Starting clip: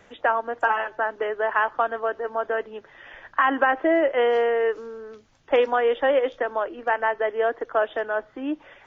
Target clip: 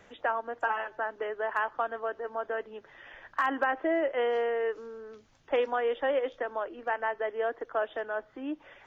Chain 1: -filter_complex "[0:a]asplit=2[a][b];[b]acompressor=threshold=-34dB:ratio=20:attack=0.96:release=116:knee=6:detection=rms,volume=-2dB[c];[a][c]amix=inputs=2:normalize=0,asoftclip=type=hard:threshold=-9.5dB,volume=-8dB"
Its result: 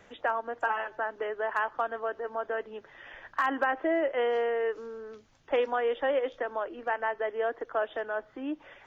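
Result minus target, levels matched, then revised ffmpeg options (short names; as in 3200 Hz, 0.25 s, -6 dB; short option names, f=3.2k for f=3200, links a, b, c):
compressor: peak gain reduction -9 dB
-filter_complex "[0:a]asplit=2[a][b];[b]acompressor=threshold=-43.5dB:ratio=20:attack=0.96:release=116:knee=6:detection=rms,volume=-2dB[c];[a][c]amix=inputs=2:normalize=0,asoftclip=type=hard:threshold=-9.5dB,volume=-8dB"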